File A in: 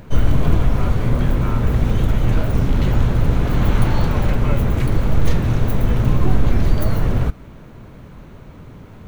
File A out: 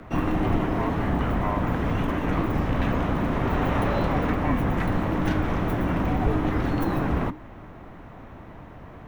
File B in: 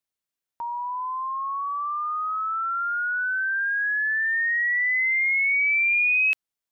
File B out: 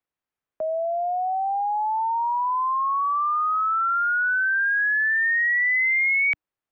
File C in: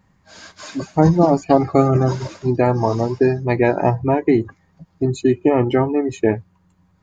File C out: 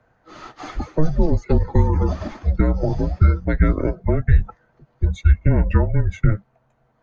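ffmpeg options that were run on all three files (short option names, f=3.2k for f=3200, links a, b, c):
-filter_complex "[0:a]acrossover=split=260 2700:gain=0.0708 1 0.158[a][b][c];[a][b][c]amix=inputs=3:normalize=0,afreqshift=-310,acrossover=split=130|3000[d][e][f];[e]acompressor=threshold=-26dB:ratio=4[g];[d][g][f]amix=inputs=3:normalize=0,volume=5dB"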